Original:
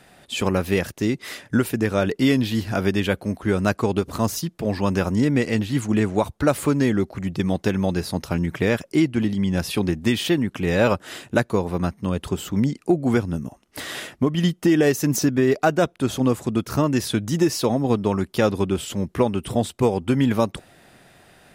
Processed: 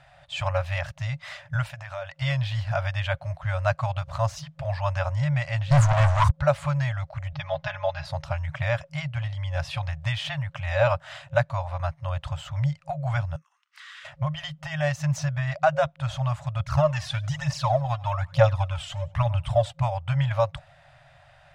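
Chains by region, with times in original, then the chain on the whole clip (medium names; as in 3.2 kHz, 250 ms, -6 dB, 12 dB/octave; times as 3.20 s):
1.69–2.22 s: bass shelf 250 Hz -11 dB + compression 12:1, threshold -25 dBFS
5.71–6.34 s: Chebyshev band-stop 400–1000 Hz, order 3 + high-order bell 3 kHz -14 dB 1.1 oct + waveshaping leveller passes 5
7.32–8.05 s: low-pass 5.2 kHz 24 dB/octave + comb 4.8 ms, depth 85%
13.36–14.05 s: peaking EQ 11 kHz -7.5 dB 0.24 oct + compression 2.5:1, threshold -39 dBFS + steep high-pass 1.1 kHz 48 dB/octave
16.60–19.73 s: feedback delay 96 ms, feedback 33%, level -22.5 dB + phaser 1.1 Hz, delay 2.9 ms, feedback 58%
whole clip: FFT band-reject 160–540 Hz; FFT filter 330 Hz 0 dB, 3.2 kHz -6 dB, 7.8 kHz -15 dB, 12 kHz -28 dB; trim +1.5 dB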